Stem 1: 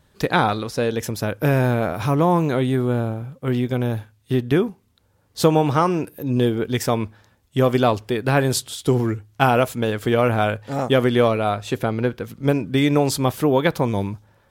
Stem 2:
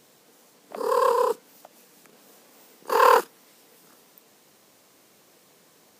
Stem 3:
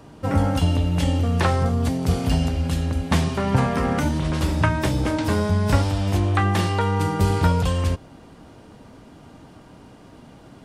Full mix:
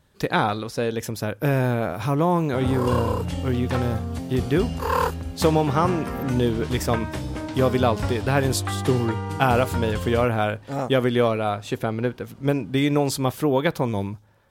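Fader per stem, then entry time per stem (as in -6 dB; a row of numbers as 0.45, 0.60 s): -3.0, -6.0, -8.0 dB; 0.00, 1.90, 2.30 s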